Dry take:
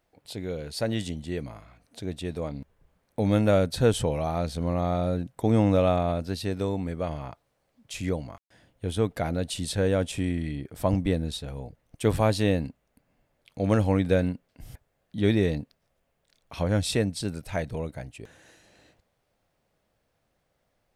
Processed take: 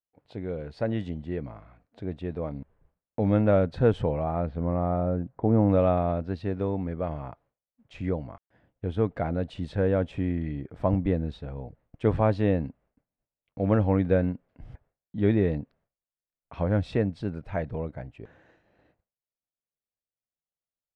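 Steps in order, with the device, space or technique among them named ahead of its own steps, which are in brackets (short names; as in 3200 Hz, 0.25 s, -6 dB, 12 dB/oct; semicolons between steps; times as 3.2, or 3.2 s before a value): hearing-loss simulation (LPF 1700 Hz 12 dB/oct; expander -55 dBFS); 4.11–5.68 LPF 3100 Hz -> 1200 Hz 12 dB/oct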